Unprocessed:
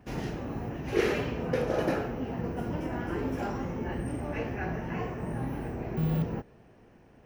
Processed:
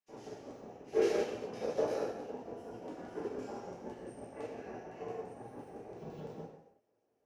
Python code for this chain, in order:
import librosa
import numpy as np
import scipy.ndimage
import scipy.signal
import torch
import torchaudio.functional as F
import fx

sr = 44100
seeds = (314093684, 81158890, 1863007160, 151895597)

y = fx.filter_lfo_bandpass(x, sr, shape='square', hz=5.9, low_hz=540.0, high_hz=6400.0, q=1.4)
y = fx.rev_gated(y, sr, seeds[0], gate_ms=410, shape='falling', drr_db=-8.0)
y = fx.upward_expand(y, sr, threshold_db=-55.0, expansion=1.5)
y = y * 10.0 ** (-4.5 / 20.0)